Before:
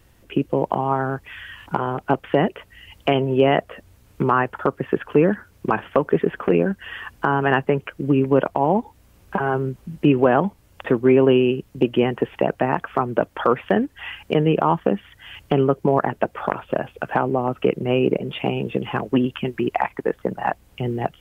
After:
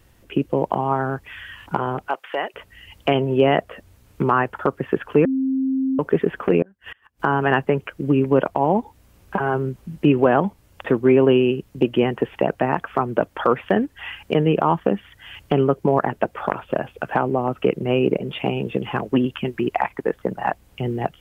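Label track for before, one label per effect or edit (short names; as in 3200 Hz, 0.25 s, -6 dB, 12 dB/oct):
2.080000	2.540000	HPF 770 Hz
5.250000	5.990000	bleep 265 Hz -18 dBFS
6.620000	7.200000	flipped gate shuts at -24 dBFS, range -29 dB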